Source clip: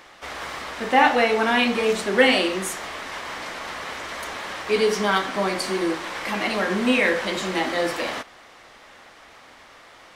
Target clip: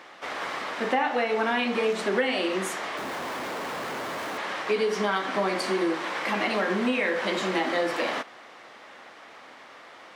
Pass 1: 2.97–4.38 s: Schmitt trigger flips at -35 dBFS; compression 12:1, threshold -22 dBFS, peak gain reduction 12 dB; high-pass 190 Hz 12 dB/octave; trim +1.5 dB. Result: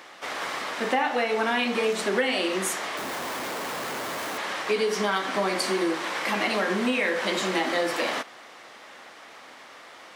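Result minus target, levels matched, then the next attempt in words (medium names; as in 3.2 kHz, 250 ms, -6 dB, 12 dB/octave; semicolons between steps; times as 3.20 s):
8 kHz band +6.0 dB
2.97–4.38 s: Schmitt trigger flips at -35 dBFS; compression 12:1, threshold -22 dBFS, peak gain reduction 12 dB; high-pass 190 Hz 12 dB/octave; treble shelf 5.2 kHz -10 dB; trim +1.5 dB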